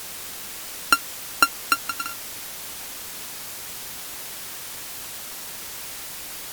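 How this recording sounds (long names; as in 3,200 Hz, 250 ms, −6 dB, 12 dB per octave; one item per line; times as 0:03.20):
a buzz of ramps at a fixed pitch in blocks of 32 samples
tremolo saw down 3 Hz, depth 70%
a quantiser's noise floor 8 bits, dither triangular
Opus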